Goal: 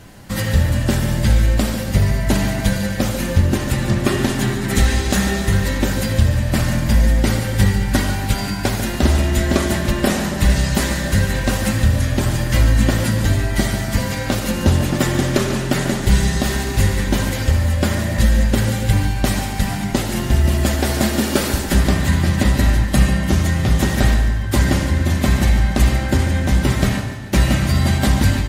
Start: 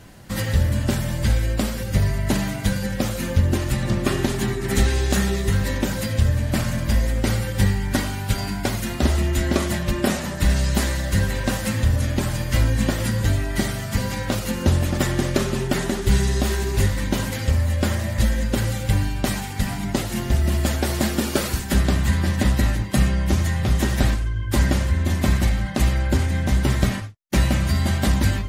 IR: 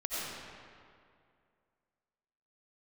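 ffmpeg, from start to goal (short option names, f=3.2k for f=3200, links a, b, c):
-filter_complex "[0:a]aecho=1:1:144|288|432|576|720:0.251|0.128|0.0653|0.0333|0.017,asplit=2[a][b];[1:a]atrim=start_sample=2205,asetrate=61740,aresample=44100[c];[b][c]afir=irnorm=-1:irlink=0,volume=-8.5dB[d];[a][d]amix=inputs=2:normalize=0,volume=2dB"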